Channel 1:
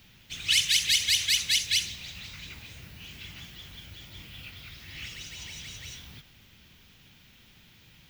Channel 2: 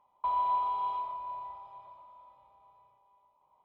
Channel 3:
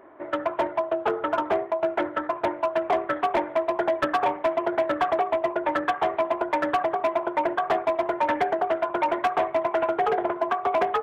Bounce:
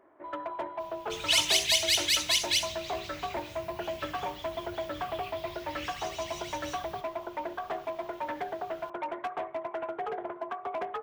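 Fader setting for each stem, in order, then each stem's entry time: -1.5 dB, -12.5 dB, -11.5 dB; 0.80 s, 0.00 s, 0.00 s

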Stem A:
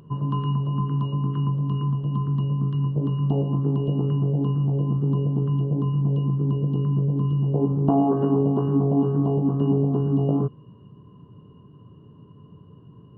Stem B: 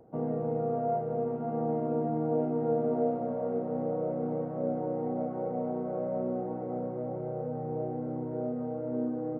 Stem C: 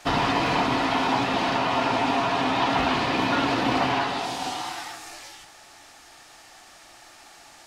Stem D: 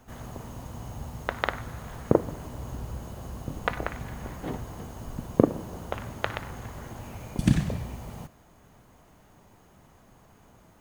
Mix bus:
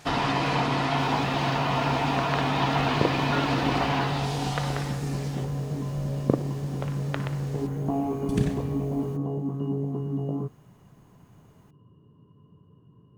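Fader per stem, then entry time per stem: -8.0 dB, -10.0 dB, -3.0 dB, -4.5 dB; 0.00 s, 0.00 s, 0.00 s, 0.90 s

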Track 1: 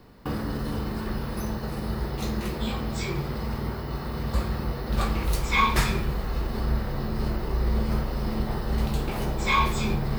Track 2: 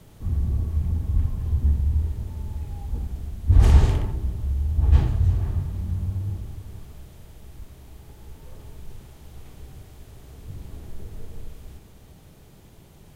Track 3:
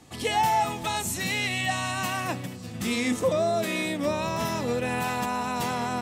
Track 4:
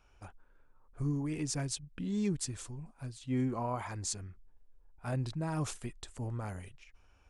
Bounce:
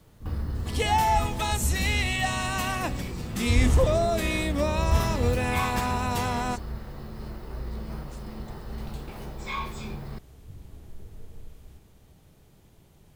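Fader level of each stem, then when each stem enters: -10.5 dB, -7.0 dB, 0.0 dB, -13.0 dB; 0.00 s, 0.00 s, 0.55 s, 2.45 s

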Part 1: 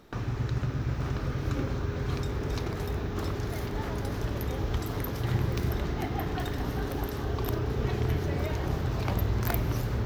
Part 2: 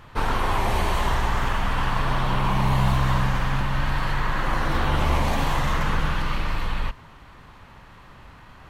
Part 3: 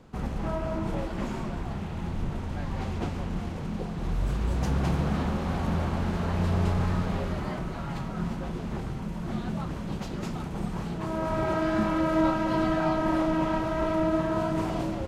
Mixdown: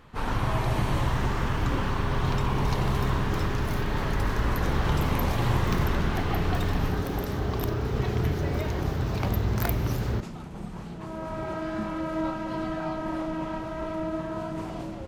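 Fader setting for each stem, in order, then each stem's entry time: +1.5 dB, -7.0 dB, -5.5 dB; 0.15 s, 0.00 s, 0.00 s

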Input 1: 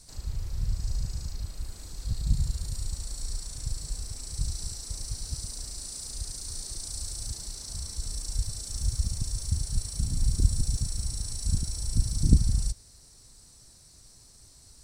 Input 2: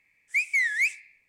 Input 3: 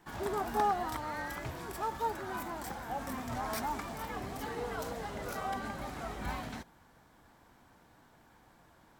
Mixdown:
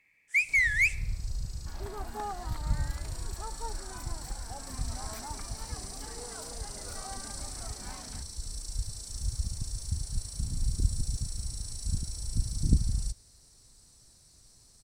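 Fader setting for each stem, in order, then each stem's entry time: -4.5 dB, -0.5 dB, -7.5 dB; 0.40 s, 0.00 s, 1.60 s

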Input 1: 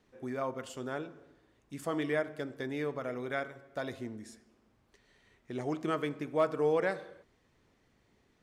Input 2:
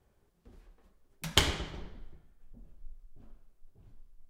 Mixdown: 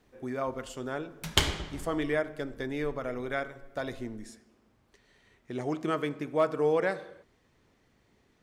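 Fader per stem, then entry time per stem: +2.5 dB, +0.5 dB; 0.00 s, 0.00 s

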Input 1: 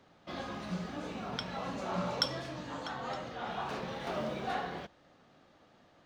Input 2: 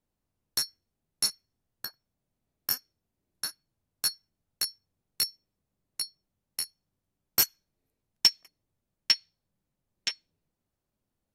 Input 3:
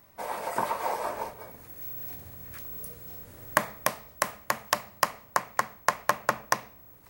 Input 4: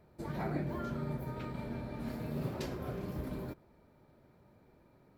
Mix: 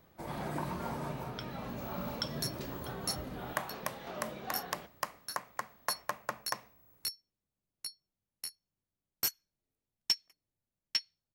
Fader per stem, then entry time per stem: -6.5 dB, -9.0 dB, -11.5 dB, -4.0 dB; 0.00 s, 1.85 s, 0.00 s, 0.00 s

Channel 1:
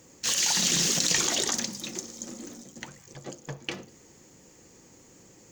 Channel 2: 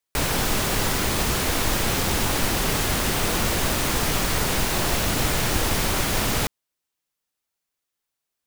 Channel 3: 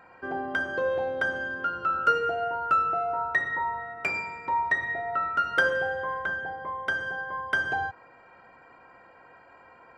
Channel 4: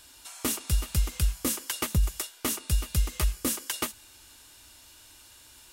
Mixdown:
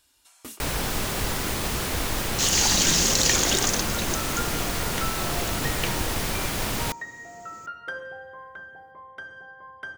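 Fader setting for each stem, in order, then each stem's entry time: +3.0 dB, -4.5 dB, -11.5 dB, -12.0 dB; 2.15 s, 0.45 s, 2.30 s, 0.00 s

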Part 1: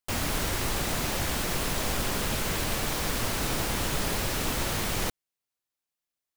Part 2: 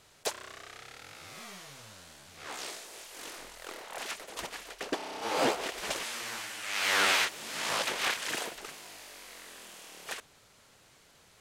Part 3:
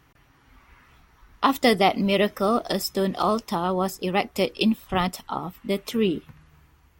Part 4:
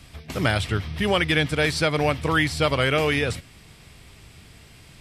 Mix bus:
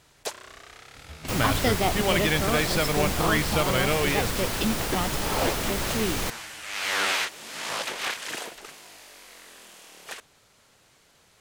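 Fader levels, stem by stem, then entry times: 0.0 dB, +0.5 dB, -6.5 dB, -4.0 dB; 1.20 s, 0.00 s, 0.00 s, 0.95 s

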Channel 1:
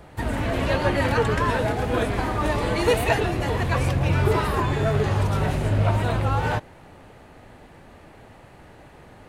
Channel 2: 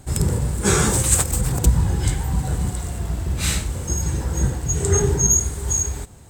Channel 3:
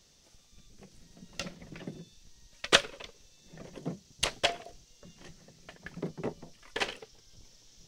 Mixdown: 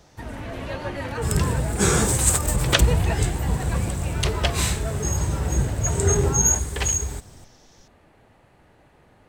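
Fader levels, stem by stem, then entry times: -8.5 dB, -2.0 dB, +2.0 dB; 0.00 s, 1.15 s, 0.00 s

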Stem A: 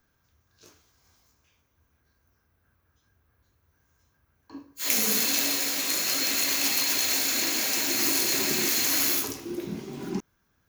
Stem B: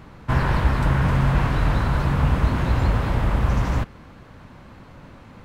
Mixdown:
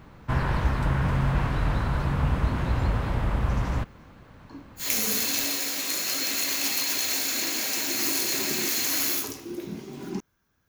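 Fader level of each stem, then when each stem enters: -1.5 dB, -5.0 dB; 0.00 s, 0.00 s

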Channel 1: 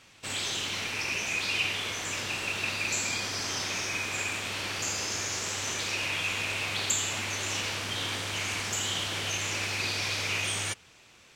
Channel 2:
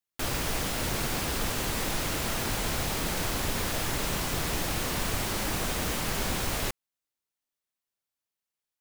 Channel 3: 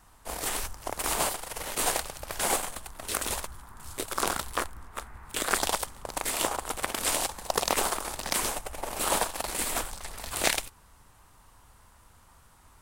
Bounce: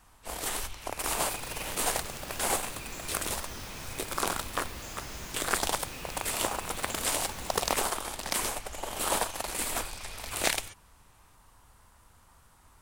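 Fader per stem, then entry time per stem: -16.0 dB, -13.0 dB, -2.0 dB; 0.00 s, 1.10 s, 0.00 s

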